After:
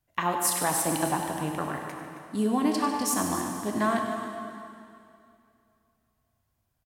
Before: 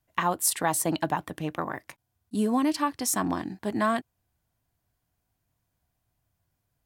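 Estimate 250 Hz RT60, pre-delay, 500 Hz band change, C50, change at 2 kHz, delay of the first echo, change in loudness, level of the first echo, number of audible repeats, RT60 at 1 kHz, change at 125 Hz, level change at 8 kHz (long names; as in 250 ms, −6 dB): 2.5 s, 5 ms, +0.5 dB, 2.5 dB, 0.0 dB, 97 ms, 0.0 dB, −13.0 dB, 2, 2.5 s, +0.5 dB, +0.5 dB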